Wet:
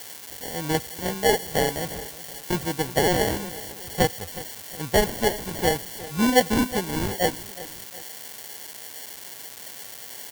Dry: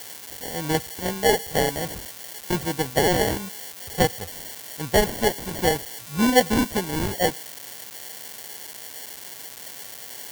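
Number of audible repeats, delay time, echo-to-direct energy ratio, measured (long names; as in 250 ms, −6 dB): 2, 365 ms, −16.0 dB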